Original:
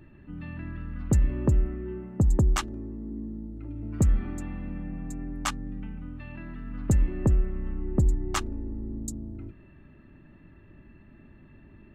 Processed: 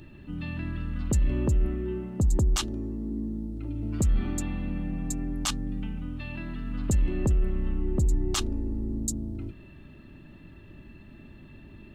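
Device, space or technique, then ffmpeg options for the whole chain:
over-bright horn tweeter: -af "highshelf=f=2.6k:t=q:w=1.5:g=8,alimiter=limit=-21.5dB:level=0:latency=1:release=12,volume=4dB"

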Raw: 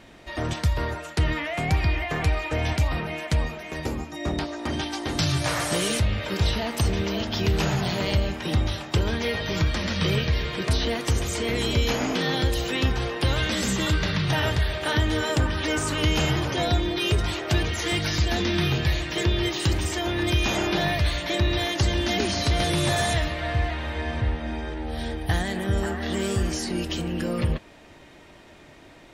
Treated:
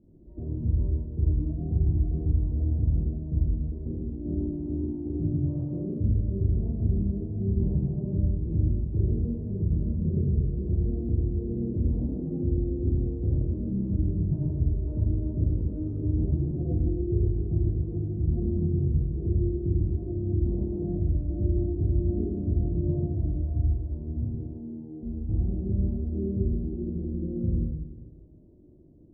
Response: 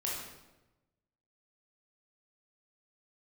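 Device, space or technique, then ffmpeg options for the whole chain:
next room: -filter_complex "[0:a]asettb=1/sr,asplit=3[a][b][c];[a]atrim=end=24.244[d];[b]atrim=start=24.24:end=25.03,asetpts=PTS-STARTPTS,afade=t=in:d=0.004:c=qsin,afade=t=out:st=0.786:d=0.004:c=qsin,highpass=f=170:w=0.5412,highpass=f=170:w=1.3066[e];[c]atrim=start=25.026[f];[d][e]acrossfade=d=0.004:c1=hsin:c2=qsin[g];[g][f]acrossfade=d=0.004:c1=qsin:c2=hsin,lowpass=f=350:w=0.5412,lowpass=f=350:w=1.3066[h];[1:a]atrim=start_sample=2205[i];[h][i]afir=irnorm=-1:irlink=0,volume=-4.5dB"

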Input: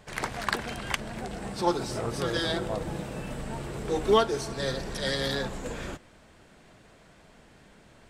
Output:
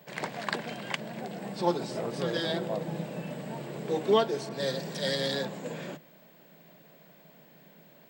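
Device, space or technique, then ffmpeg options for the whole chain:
old television with a line whistle: -filter_complex "[0:a]highpass=f=160:w=0.5412,highpass=f=160:w=1.3066,equalizer=f=160:t=q:w=4:g=10,equalizer=f=580:t=q:w=4:g=5,equalizer=f=1.3k:t=q:w=4:g=-6,equalizer=f=6k:t=q:w=4:g=-6,lowpass=f=7.9k:w=0.5412,lowpass=f=7.9k:w=1.3066,aeval=exprs='val(0)+0.00158*sin(2*PI*15734*n/s)':c=same,asettb=1/sr,asplit=3[a][b][c];[a]atrim=end=4.494[d];[b]atrim=start=4.49:end=5.45,asetpts=PTS-STARTPTS,afade=t=in:d=0.004:c=qsin,afade=t=out:st=0.956:d=0.004:c=qsin,adynamicequalizer=threshold=0.00501:dfrequency=4100:dqfactor=0.7:tfrequency=4100:tqfactor=0.7:attack=5:release=100:ratio=0.375:range=3:mode=boostabove:tftype=highshelf[e];[c]atrim=start=5.446[f];[d][e]acrossfade=d=0.004:c1=hsin:c2=qsin[g];[g][f]acrossfade=d=0.004:c1=qsin:c2=hsin,volume=-2.5dB"

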